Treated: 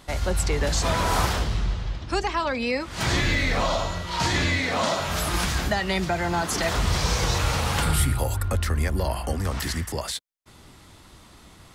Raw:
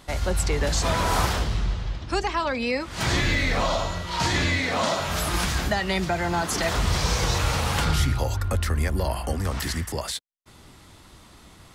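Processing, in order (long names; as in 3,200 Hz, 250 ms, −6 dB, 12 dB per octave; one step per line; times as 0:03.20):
0:07.82–0:08.43: high shelf with overshoot 7,400 Hz +6.5 dB, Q 3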